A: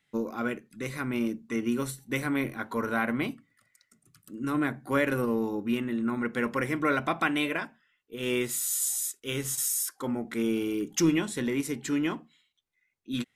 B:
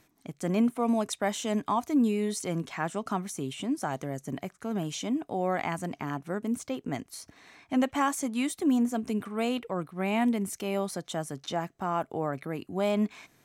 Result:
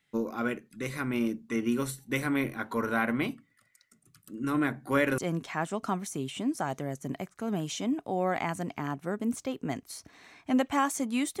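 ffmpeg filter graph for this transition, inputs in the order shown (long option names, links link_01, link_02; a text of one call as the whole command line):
ffmpeg -i cue0.wav -i cue1.wav -filter_complex "[0:a]apad=whole_dur=11.4,atrim=end=11.4,atrim=end=5.182[link_01];[1:a]atrim=start=2.408:end=8.63[link_02];[link_01][link_02]acrossfade=duration=0.004:curve1=hsin:curve2=hsin" out.wav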